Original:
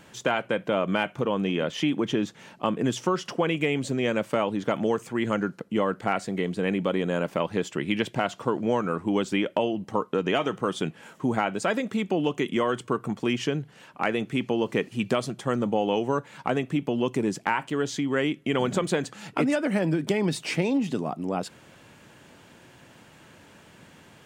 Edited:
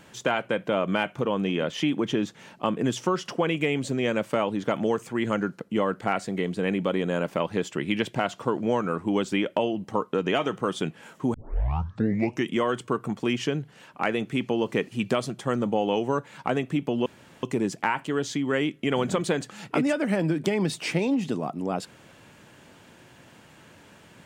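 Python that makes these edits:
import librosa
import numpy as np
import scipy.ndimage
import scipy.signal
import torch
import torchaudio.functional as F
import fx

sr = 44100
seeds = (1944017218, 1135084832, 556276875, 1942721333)

y = fx.edit(x, sr, fx.tape_start(start_s=11.34, length_s=1.18),
    fx.insert_room_tone(at_s=17.06, length_s=0.37), tone=tone)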